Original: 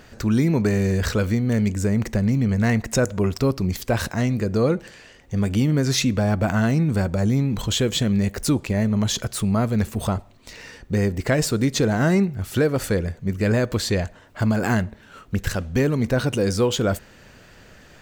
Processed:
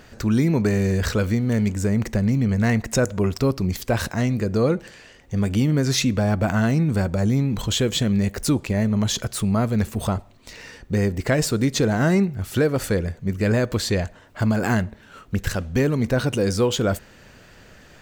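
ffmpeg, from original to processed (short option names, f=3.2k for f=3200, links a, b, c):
-filter_complex "[0:a]asettb=1/sr,asplit=3[a][b][c];[a]atrim=end=1.404[d];[b]atrim=start=1.4:end=1.89,asetpts=PTS-STARTPTS,afade=t=in:d=0.004:c=qsin,afade=t=out:st=0.486:d=0.004:c=qsin,aeval=exprs='sgn(val(0))*max(abs(val(0))-0.00422,0)':c=same[e];[c]atrim=start=1.886[f];[d][e]acrossfade=d=0.004:c1=hsin:c2=qsin[g];[g][f]acrossfade=d=0.004:c1=qsin:c2=hsin"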